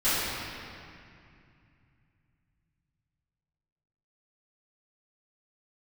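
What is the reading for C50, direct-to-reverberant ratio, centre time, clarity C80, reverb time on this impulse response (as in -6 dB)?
-4.5 dB, -16.5 dB, 179 ms, -2.0 dB, 2.4 s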